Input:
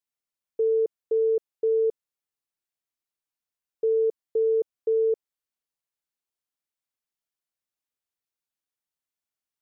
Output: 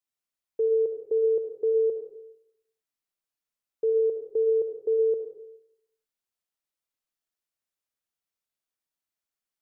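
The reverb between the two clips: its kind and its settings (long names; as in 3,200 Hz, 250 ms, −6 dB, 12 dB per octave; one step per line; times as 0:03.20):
comb and all-pass reverb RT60 0.79 s, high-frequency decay 0.9×, pre-delay 25 ms, DRR 3.5 dB
level −1.5 dB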